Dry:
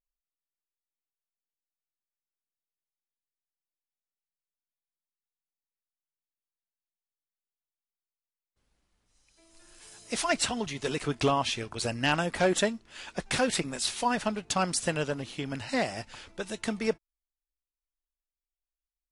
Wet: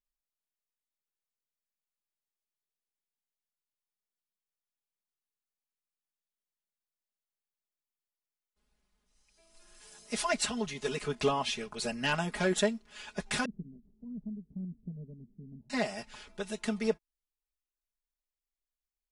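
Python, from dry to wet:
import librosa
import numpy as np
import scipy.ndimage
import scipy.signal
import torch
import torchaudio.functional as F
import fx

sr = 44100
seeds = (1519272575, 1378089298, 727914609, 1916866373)

y = fx.ladder_lowpass(x, sr, hz=270.0, resonance_pct=25, at=(13.45, 15.7))
y = y + 0.96 * np.pad(y, (int(4.8 * sr / 1000.0), 0))[:len(y)]
y = y * 10.0 ** (-6.0 / 20.0)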